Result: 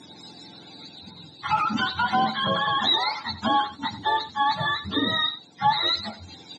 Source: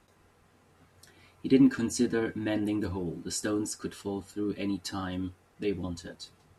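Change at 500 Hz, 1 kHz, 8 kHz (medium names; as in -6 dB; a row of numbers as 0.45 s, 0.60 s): -2.5 dB, +22.5 dB, under -10 dB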